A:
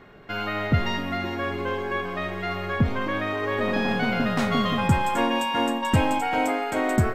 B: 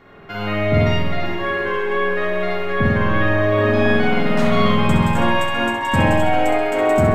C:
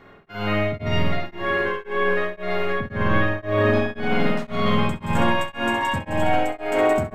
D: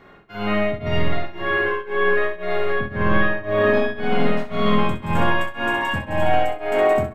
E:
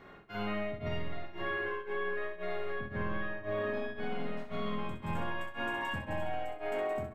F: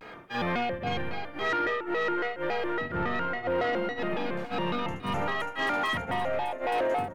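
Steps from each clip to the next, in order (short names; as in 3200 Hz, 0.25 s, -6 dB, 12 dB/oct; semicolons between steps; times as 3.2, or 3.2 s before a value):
notches 60/120/180/240/300/360/420 Hz; flutter echo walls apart 11.3 m, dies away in 0.48 s; spring tank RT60 1.5 s, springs 48 ms, chirp 25 ms, DRR -5 dB
limiter -9 dBFS, peak gain reduction 6.5 dB; beating tremolo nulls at 1.9 Hz
on a send: early reflections 24 ms -8.5 dB, 63 ms -10.5 dB; on the sum: dynamic EQ 7400 Hz, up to -6 dB, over -50 dBFS, Q 0.91
compressor 4:1, threshold -28 dBFS, peak gain reduction 14 dB; gain -5.5 dB
low shelf 170 Hz -9.5 dB; in parallel at -11 dB: sine folder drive 7 dB, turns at -24.5 dBFS; on the sum: shaped vibrato square 3.6 Hz, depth 250 cents; gain +3.5 dB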